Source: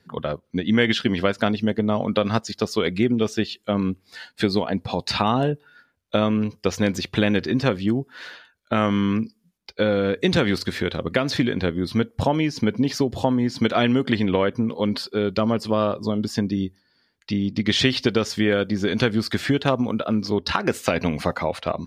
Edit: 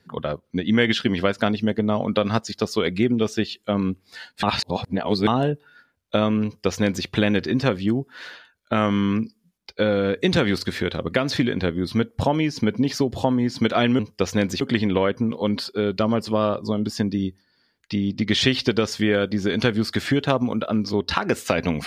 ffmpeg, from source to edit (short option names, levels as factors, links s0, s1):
-filter_complex "[0:a]asplit=5[s0][s1][s2][s3][s4];[s0]atrim=end=4.432[s5];[s1]atrim=start=4.428:end=5.272,asetpts=PTS-STARTPTS,areverse[s6];[s2]atrim=start=5.268:end=13.992[s7];[s3]atrim=start=6.438:end=7.062[s8];[s4]atrim=start=13.988[s9];[s5][s6]acrossfade=d=0.004:c1=hsin:c2=hsin[s10];[s10][s7]acrossfade=d=0.004:c1=hsin:c2=hsin[s11];[s11][s8]acrossfade=d=0.004:c1=hsin:c2=hsin[s12];[s12][s9]acrossfade=d=0.004:c1=hsin:c2=hsin"